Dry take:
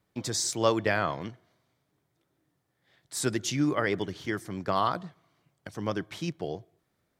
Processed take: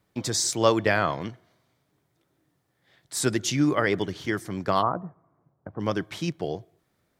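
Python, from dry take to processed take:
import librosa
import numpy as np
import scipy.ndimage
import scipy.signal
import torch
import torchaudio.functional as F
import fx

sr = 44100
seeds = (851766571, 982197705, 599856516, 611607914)

y = fx.lowpass(x, sr, hz=1200.0, slope=24, at=(4.81, 5.79), fade=0.02)
y = F.gain(torch.from_numpy(y), 4.0).numpy()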